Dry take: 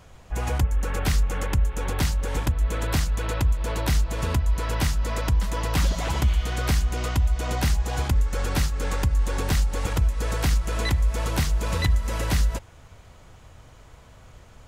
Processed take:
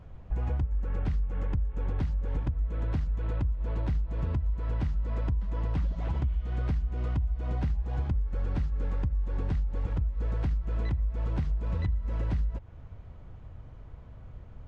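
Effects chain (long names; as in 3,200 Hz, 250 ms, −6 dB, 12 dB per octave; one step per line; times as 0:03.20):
low-shelf EQ 300 Hz +9.5 dB
downward compressor, threshold −21 dBFS, peak gain reduction 13 dB
head-to-tape spacing loss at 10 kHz 30 dB
level −5 dB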